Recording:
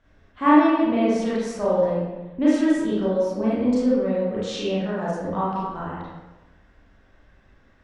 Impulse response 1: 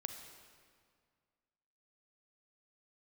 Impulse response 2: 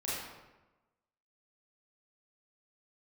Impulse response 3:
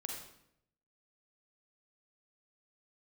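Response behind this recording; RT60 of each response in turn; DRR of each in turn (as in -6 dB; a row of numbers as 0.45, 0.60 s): 2; 2.0, 1.1, 0.75 s; 6.0, -9.0, 0.0 dB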